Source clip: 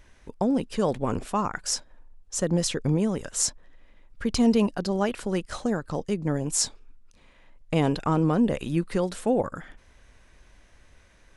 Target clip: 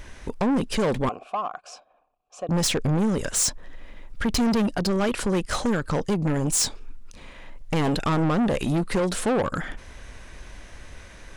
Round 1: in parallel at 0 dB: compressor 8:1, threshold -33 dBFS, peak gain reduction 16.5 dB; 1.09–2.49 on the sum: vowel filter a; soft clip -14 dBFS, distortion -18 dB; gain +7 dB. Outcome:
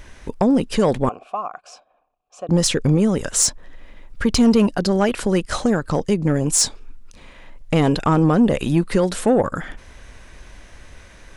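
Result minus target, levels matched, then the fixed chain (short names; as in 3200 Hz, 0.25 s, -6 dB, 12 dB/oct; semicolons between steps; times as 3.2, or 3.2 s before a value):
soft clip: distortion -12 dB
in parallel at 0 dB: compressor 8:1, threshold -33 dBFS, peak gain reduction 16.5 dB; 1.09–2.49 on the sum: vowel filter a; soft clip -26 dBFS, distortion -6 dB; gain +7 dB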